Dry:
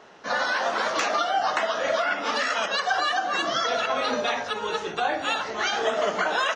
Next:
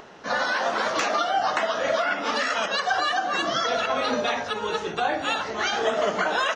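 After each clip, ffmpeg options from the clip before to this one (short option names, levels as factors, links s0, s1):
-af "lowshelf=f=260:g=6,acompressor=mode=upward:threshold=0.00891:ratio=2.5"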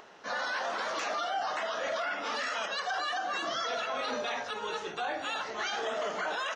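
-af "lowshelf=f=280:g=-11,alimiter=limit=0.106:level=0:latency=1:release=11,volume=0.531"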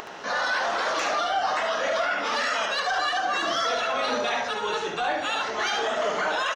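-filter_complex "[0:a]acompressor=mode=upward:threshold=0.01:ratio=2.5,asoftclip=type=tanh:threshold=0.0631,asplit=2[s0][s1];[s1]aecho=0:1:72:0.473[s2];[s0][s2]amix=inputs=2:normalize=0,volume=2.37"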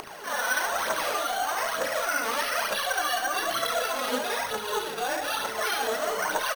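-af "aecho=1:1:36|74:0.631|0.596,aphaser=in_gain=1:out_gain=1:delay=4.6:decay=0.58:speed=1.1:type=triangular,acrusher=samples=6:mix=1:aa=0.000001,volume=0.501"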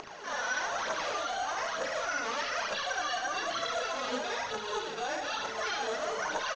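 -filter_complex "[0:a]asplit=2[s0][s1];[s1]volume=31.6,asoftclip=hard,volume=0.0316,volume=0.631[s2];[s0][s2]amix=inputs=2:normalize=0,aresample=16000,aresample=44100,volume=0.398"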